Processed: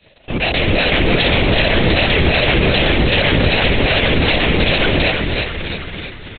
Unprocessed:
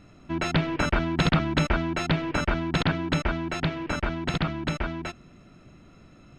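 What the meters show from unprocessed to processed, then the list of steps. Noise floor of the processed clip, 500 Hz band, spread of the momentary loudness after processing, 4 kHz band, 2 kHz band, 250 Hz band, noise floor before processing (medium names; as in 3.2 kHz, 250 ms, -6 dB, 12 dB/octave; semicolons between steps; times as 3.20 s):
-35 dBFS, +15.0 dB, 9 LU, +18.0 dB, +15.0 dB, +8.5 dB, -53 dBFS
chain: tilt EQ +2.5 dB/octave; de-hum 50.75 Hz, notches 22; in parallel at -3 dB: compression, threshold -39 dBFS, peak gain reduction 18.5 dB; on the sum: waveshaping leveller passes 5; peak limiter -12.5 dBFS, peak gain reduction 4.5 dB; level rider gain up to 12 dB; hard clipper -8.5 dBFS, distortion -13 dB; static phaser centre 500 Hz, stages 4; on a send: frequency-shifting echo 327 ms, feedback 57%, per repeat -91 Hz, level -3.5 dB; on the sum: LPC vocoder at 8 kHz whisper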